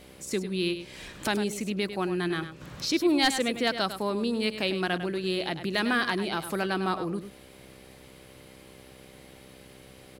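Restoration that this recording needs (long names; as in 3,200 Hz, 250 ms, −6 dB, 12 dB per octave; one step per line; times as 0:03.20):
clipped peaks rebuilt −13.5 dBFS
hum removal 64.9 Hz, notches 9
echo removal 101 ms −10.5 dB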